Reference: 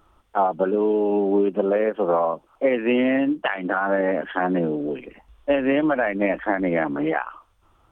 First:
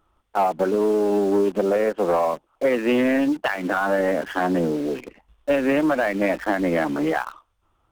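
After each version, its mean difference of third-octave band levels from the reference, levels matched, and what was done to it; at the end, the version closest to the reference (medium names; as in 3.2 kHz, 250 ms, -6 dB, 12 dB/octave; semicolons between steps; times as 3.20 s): 7.0 dB: waveshaping leveller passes 1; in parallel at -7 dB: bit crusher 5-bit; on the sum: loudspeaker Doppler distortion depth 0.1 ms; trim -5.5 dB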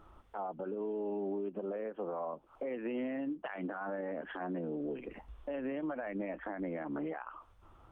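2.5 dB: treble shelf 2.5 kHz -10 dB; compression 8:1, threshold -35 dBFS, peak gain reduction 19 dB; peak limiter -31 dBFS, peak gain reduction 10 dB; trim +1 dB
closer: second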